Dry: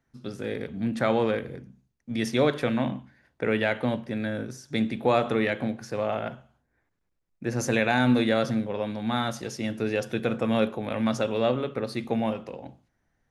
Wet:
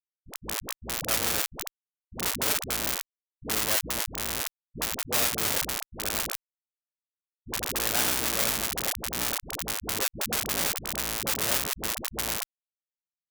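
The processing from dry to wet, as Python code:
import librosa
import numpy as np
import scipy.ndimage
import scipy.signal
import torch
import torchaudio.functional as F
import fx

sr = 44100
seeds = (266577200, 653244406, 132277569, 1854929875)

y = fx.octave_divider(x, sr, octaves=2, level_db=2.0)
y = fx.echo_feedback(y, sr, ms=438, feedback_pct=24, wet_db=-10)
y = fx.schmitt(y, sr, flips_db=-22.0)
y = fx.tilt_eq(y, sr, slope=4.5)
y = fx.dispersion(y, sr, late='highs', ms=74.0, hz=410.0)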